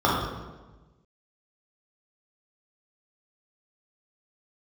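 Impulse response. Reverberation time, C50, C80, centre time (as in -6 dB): 1.2 s, 0.5 dB, 3.0 dB, 73 ms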